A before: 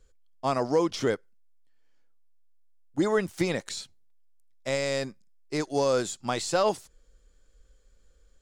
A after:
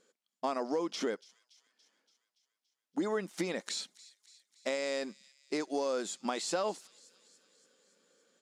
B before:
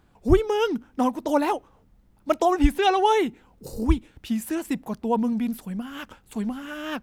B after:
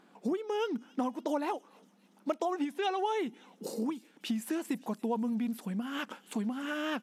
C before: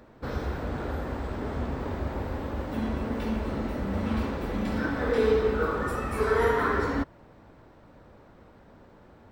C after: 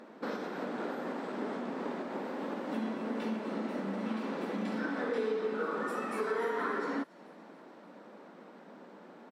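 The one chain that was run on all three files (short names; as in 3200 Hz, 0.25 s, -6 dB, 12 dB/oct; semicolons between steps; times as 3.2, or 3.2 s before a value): downsampling 32000 Hz; compressor 4:1, threshold -34 dBFS; brick-wall FIR high-pass 170 Hz; high shelf 12000 Hz -9.5 dB; on a send: thin delay 0.285 s, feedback 61%, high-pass 3400 Hz, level -17.5 dB; on the sum: gain +2.5 dB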